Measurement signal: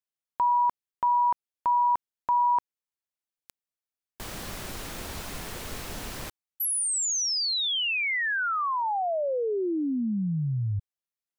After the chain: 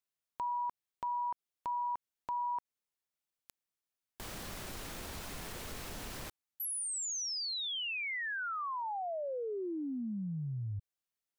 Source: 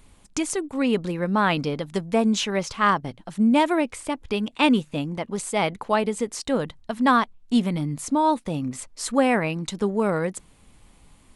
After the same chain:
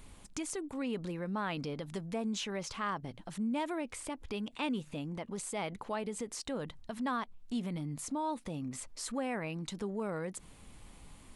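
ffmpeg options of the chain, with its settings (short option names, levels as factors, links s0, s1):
-af "acompressor=threshold=0.00562:ratio=2:attack=2.4:release=52:detection=rms"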